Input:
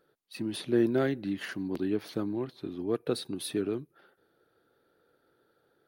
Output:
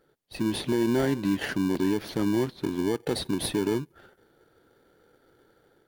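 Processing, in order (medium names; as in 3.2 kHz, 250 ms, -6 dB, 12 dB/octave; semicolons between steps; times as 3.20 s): level rider gain up to 4 dB; in parallel at -5 dB: sample-and-hold 34×; on the sum: peak limiter -18 dBFS, peak gain reduction 11 dB; trim +1.5 dB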